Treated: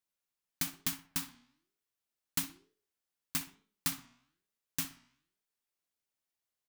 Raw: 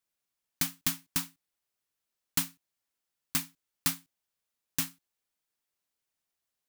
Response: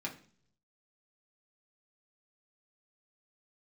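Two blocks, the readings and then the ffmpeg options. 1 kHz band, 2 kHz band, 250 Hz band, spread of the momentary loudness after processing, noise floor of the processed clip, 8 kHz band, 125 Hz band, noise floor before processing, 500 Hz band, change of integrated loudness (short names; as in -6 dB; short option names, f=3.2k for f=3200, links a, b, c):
-4.0 dB, -4.5 dB, -4.5 dB, 9 LU, under -85 dBFS, -4.5 dB, -5.0 dB, under -85 dBFS, -4.0 dB, -4.5 dB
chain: -filter_complex "[0:a]flanger=delay=9:depth=7.7:regen=88:speed=1.1:shape=sinusoidal,asplit=2[a][b];[b]adelay=62,lowpass=f=2.1k:p=1,volume=-10.5dB,asplit=2[c][d];[d]adelay=62,lowpass=f=2.1k:p=1,volume=0.39,asplit=2[e][f];[f]adelay=62,lowpass=f=2.1k:p=1,volume=0.39,asplit=2[g][h];[h]adelay=62,lowpass=f=2.1k:p=1,volume=0.39[i];[c][e][g][i]amix=inputs=4:normalize=0[j];[a][j]amix=inputs=2:normalize=0"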